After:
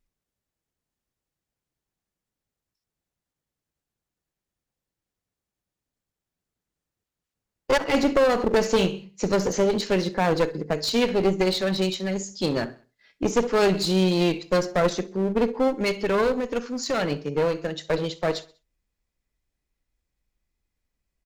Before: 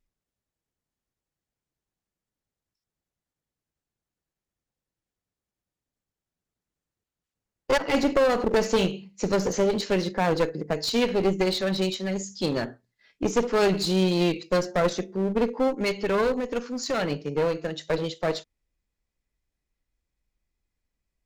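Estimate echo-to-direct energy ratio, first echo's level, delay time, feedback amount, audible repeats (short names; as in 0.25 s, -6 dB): -20.0 dB, -21.0 dB, 65 ms, 48%, 3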